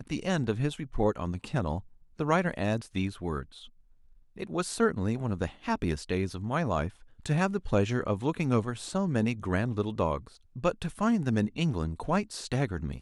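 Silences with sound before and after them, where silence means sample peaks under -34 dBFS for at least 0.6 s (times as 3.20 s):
3.43–4.38 s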